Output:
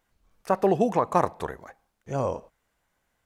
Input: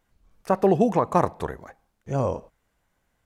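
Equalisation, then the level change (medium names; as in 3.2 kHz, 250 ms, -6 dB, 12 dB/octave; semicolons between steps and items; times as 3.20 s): bass shelf 350 Hz -6 dB; 0.0 dB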